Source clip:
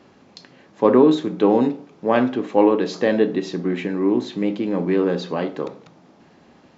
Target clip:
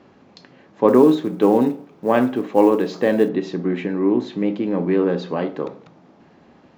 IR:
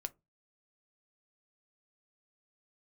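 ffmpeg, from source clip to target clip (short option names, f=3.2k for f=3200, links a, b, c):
-filter_complex "[0:a]highshelf=f=4.1k:g=-10,asettb=1/sr,asplit=3[a][b][c];[a]atrim=end=0.884[d];[b]atrim=start=0.88:end=3.29,asetpts=PTS-STARTPTS,afade=t=in:d=0.004:c=qsin,afade=t=out:st=2.406:d=0.004:c=qsin,acrusher=bits=9:mode=log:mix=0:aa=0.000001[e];[c]atrim=start=3.286[f];[d][e]acrossfade=d=0.004:c1=hsin:c2=qsin[g];[g][f]acrossfade=d=0.004:c1=qsin:c2=hsin,volume=1dB"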